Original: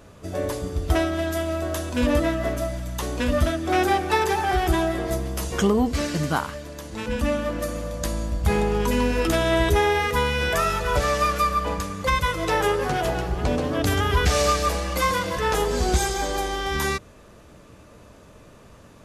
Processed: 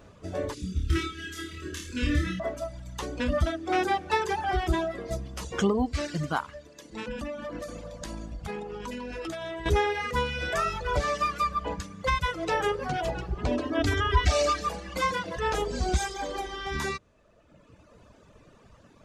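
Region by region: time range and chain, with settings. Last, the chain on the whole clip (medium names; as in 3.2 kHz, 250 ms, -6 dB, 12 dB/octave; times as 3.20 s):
0.54–2.40 s: Butterworth band-stop 750 Hz, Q 0.65 + flutter echo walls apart 4.6 m, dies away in 0.8 s
6.68–9.66 s: peaking EQ 76 Hz -12 dB 0.85 oct + compression 12:1, threshold -25 dBFS
13.51–14.61 s: treble shelf 9.1 kHz -5.5 dB + comb 3.1 ms, depth 73%
whole clip: reverb removal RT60 1.5 s; peaking EQ 12 kHz -15 dB 0.6 oct; trim -3.5 dB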